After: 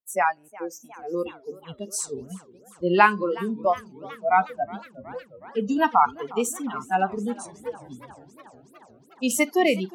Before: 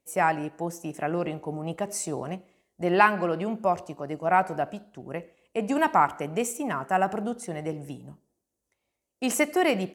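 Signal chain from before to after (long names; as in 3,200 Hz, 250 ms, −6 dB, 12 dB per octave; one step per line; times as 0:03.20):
noise reduction from a noise print of the clip's start 28 dB
feedback echo with a swinging delay time 364 ms, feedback 74%, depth 174 cents, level −20.5 dB
level +3 dB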